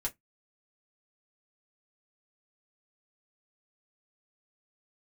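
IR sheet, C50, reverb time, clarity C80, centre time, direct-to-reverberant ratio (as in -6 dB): 24.5 dB, 0.15 s, 38.5 dB, 8 ms, -2.5 dB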